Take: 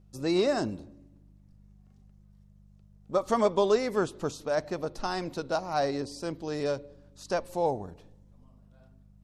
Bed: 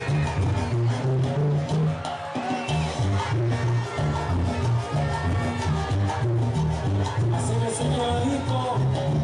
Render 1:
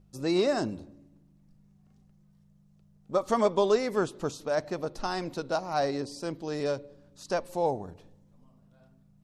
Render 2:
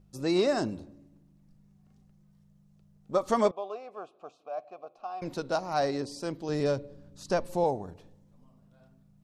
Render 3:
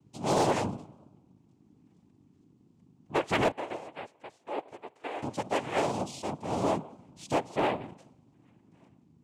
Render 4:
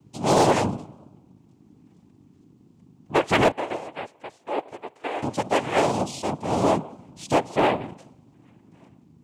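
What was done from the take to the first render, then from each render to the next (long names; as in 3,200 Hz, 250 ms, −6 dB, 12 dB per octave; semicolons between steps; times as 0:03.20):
hum removal 50 Hz, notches 2
0:03.51–0:05.22: formant filter a; 0:06.49–0:07.64: low-shelf EQ 250 Hz +8.5 dB
cochlear-implant simulation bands 4; gain into a clipping stage and back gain 19.5 dB
level +7.5 dB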